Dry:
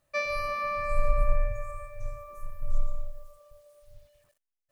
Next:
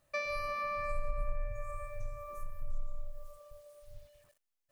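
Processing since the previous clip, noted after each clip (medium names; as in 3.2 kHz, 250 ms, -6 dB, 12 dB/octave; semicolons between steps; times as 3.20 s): compression 2.5:1, threshold -37 dBFS, peak gain reduction 13.5 dB; trim +1 dB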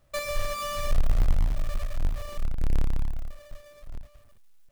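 square wave that keeps the level; bass shelf 120 Hz +10 dB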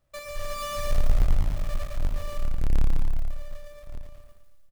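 level rider gain up to 9 dB; feedback delay 114 ms, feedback 50%, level -9 dB; trim -8.5 dB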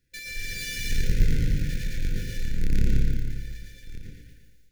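brick-wall FIR band-stop 530–1400 Hz; reverberation RT60 0.40 s, pre-delay 108 ms, DRR 0 dB; trim +2.5 dB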